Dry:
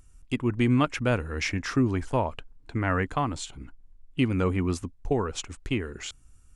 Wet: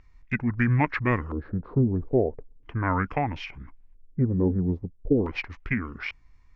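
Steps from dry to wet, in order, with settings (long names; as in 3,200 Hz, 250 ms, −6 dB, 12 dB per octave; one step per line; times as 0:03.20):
formants moved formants −5 semitones
auto-filter low-pass square 0.38 Hz 450–2,300 Hz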